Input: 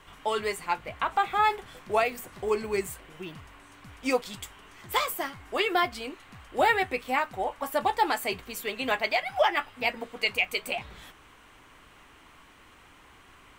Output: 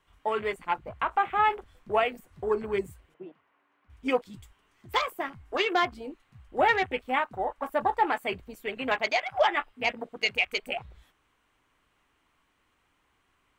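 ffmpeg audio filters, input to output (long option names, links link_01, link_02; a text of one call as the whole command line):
ffmpeg -i in.wav -filter_complex "[0:a]asettb=1/sr,asplit=3[link_01][link_02][link_03];[link_01]atrim=end=3.144[link_04];[link_02]atrim=start=3.14:end=3.9,asetpts=PTS-STARTPTS,afade=type=in:duration=0.004:curve=qsin,afade=type=out:start_time=0.756:duration=0.004:curve=qsin,highpass=310,lowpass=2200[link_05];[link_03]atrim=start=3.896[link_06];[link_04][link_05]acrossfade=duration=0.004:curve1=hsin:curve2=qsin[link_07];[link_07][link_06]acrossfade=duration=0.004:curve1=qsin:curve2=hsin,afwtdn=0.0158" out.wav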